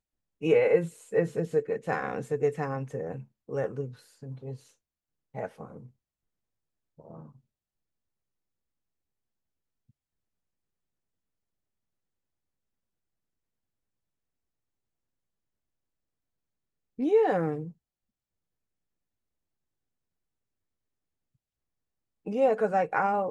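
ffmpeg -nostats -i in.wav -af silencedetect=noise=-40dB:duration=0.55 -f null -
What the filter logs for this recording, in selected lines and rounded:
silence_start: 4.56
silence_end: 5.35 | silence_duration: 0.79
silence_start: 5.85
silence_end: 7.00 | silence_duration: 1.14
silence_start: 7.23
silence_end: 16.99 | silence_duration: 9.76
silence_start: 17.70
silence_end: 22.26 | silence_duration: 4.57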